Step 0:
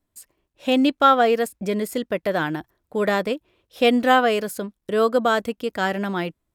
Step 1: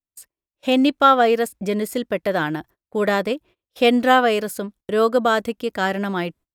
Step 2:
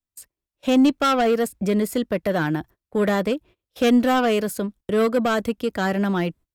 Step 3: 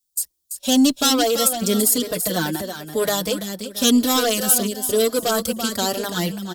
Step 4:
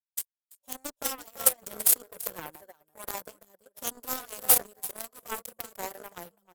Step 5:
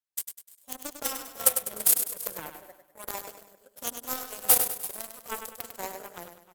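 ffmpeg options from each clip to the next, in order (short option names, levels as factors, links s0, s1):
-af "agate=range=0.0631:threshold=0.00501:ratio=16:detection=peak,volume=1.19"
-filter_complex "[0:a]lowshelf=f=200:g=7.5,acrossover=split=260|6200[s0][s1][s2];[s1]asoftclip=type=tanh:threshold=0.15[s3];[s0][s3][s2]amix=inputs=3:normalize=0"
-filter_complex "[0:a]aexciter=amount=5.5:drive=7.5:freq=3400,aecho=1:1:336|672|1008:0.398|0.111|0.0312,asplit=2[s0][s1];[s1]adelay=4.4,afreqshift=0.99[s2];[s0][s2]amix=inputs=2:normalize=1,volume=1.19"
-af "equalizer=f=125:t=o:w=1:g=-3,equalizer=f=250:t=o:w=1:g=-9,equalizer=f=500:t=o:w=1:g=9,equalizer=f=1000:t=o:w=1:g=10,equalizer=f=2000:t=o:w=1:g=-5,equalizer=f=4000:t=o:w=1:g=-12,equalizer=f=16000:t=o:w=1:g=10,afftfilt=real='re*lt(hypot(re,im),1.26)':imag='im*lt(hypot(re,im),1.26)':win_size=1024:overlap=0.75,aeval=exprs='1.5*(cos(1*acos(clip(val(0)/1.5,-1,1)))-cos(1*PI/2))+0.211*(cos(7*acos(clip(val(0)/1.5,-1,1)))-cos(7*PI/2))':c=same,volume=0.531"
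-af "aecho=1:1:100|200|300|400|500:0.398|0.159|0.0637|0.0255|0.0102"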